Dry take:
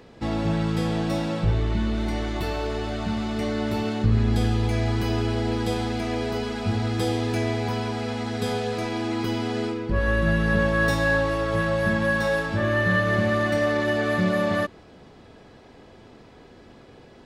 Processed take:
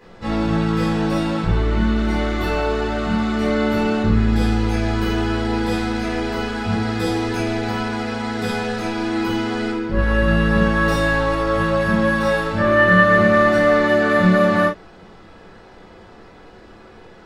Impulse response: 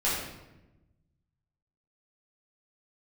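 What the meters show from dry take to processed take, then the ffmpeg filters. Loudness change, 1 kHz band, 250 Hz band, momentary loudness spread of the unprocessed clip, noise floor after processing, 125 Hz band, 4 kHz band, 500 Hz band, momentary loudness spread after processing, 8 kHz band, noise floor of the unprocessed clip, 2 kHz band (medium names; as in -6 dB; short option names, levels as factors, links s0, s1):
+6.0 dB, +8.0 dB, +6.5 dB, 7 LU, -44 dBFS, +2.5 dB, +4.0 dB, +6.0 dB, 9 LU, +3.0 dB, -49 dBFS, +6.0 dB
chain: -filter_complex "[0:a]equalizer=f=1400:w=1.8:g=5.5[s0];[1:a]atrim=start_sample=2205,atrim=end_sample=3528[s1];[s0][s1]afir=irnorm=-1:irlink=0,volume=0.596"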